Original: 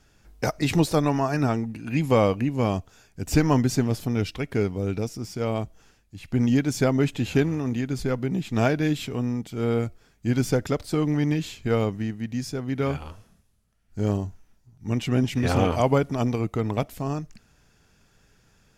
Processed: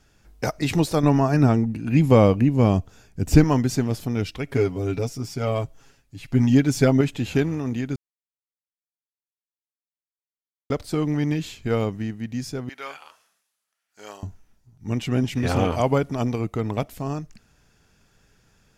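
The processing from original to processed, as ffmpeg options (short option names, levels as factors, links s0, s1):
-filter_complex "[0:a]asettb=1/sr,asplit=3[s0][s1][s2];[s0]atrim=end=1.034[s3];[s1]atrim=start=1.03:end=3.44,asetpts=PTS-STARTPTS,afade=t=in:d=0.004:c=qsin,afade=t=out:st=2.406:d=0.004:c=qsin,lowshelf=f=470:g=8[s4];[s2]atrim=start=3.436[s5];[s3][s4]acrossfade=d=0.004:c1=hsin:c2=qsin[s6];[s6][s5]acrossfade=d=0.004:c1=qsin:c2=hsin,asettb=1/sr,asplit=3[s7][s8][s9];[s7]atrim=end=4.464[s10];[s8]atrim=start=4.46:end=7.01,asetpts=PTS-STARTPTS,afade=t=in:d=0.004:c=qsin,afade=t=out:st=2.546:d=0.004:c=qsin,aecho=1:1:7.3:0.83,atrim=end_sample=112455[s11];[s9]atrim=start=7.006[s12];[s10][s11]acrossfade=d=0.004:c1=hsin:c2=qsin[s13];[s13][s12]acrossfade=d=0.004:c1=qsin:c2=hsin,asettb=1/sr,asplit=3[s14][s15][s16];[s14]atrim=end=12.694[s17];[s15]atrim=start=12.69:end=14.23,asetpts=PTS-STARTPTS,afade=t=in:d=0.004:c=qsin,afade=t=out:st=1.536:d=0.004:c=qsin,highpass=1000[s18];[s16]atrim=start=14.226[s19];[s17][s18]acrossfade=d=0.004:c1=hsin:c2=qsin[s20];[s20][s19]acrossfade=d=0.004:c1=qsin:c2=hsin,asplit=3[s21][s22][s23];[s21]atrim=end=7.96,asetpts=PTS-STARTPTS,afade=t=out:st=7.956:d=0.004:c=hsin[s24];[s22]atrim=start=7.96:end=10.7,asetpts=PTS-STARTPTS,volume=0[s25];[s23]atrim=start=10.7,asetpts=PTS-STARTPTS,afade=t=in:d=0.004:c=hsin[s26];[s24][s25][s26]concat=n=3:v=0:a=1"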